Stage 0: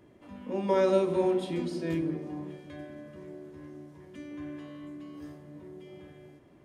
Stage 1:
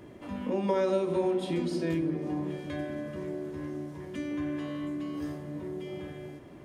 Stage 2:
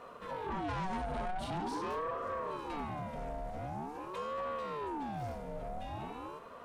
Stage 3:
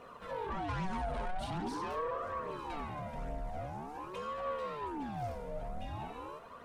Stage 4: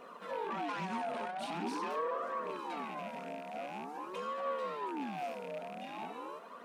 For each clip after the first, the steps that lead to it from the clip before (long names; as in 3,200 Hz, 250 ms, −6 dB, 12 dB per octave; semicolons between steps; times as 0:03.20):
downward compressor 2.5 to 1, threshold −39 dBFS, peak gain reduction 13.5 dB; level +9 dB
soft clipping −32.5 dBFS, distortion −8 dB; ring modulator whose carrier an LFO sweeps 580 Hz, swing 45%, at 0.45 Hz; level +1.5 dB
flanger 1.2 Hz, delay 0.3 ms, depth 1.9 ms, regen +42%; level +3.5 dB
loose part that buzzes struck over −45 dBFS, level −39 dBFS; linear-phase brick-wall high-pass 170 Hz; level +1 dB